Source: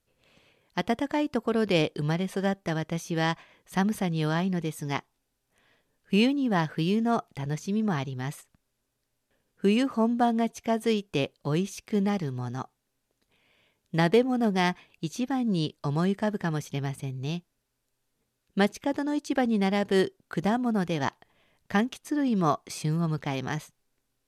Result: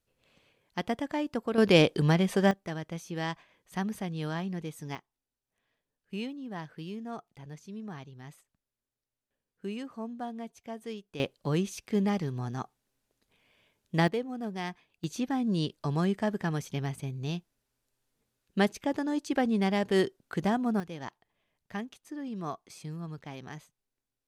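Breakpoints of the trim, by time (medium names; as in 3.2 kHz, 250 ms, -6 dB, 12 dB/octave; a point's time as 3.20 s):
-4.5 dB
from 1.58 s +3.5 dB
from 2.51 s -7 dB
from 4.95 s -14 dB
from 11.20 s -1.5 dB
from 14.08 s -11 dB
from 15.04 s -2 dB
from 20.80 s -12 dB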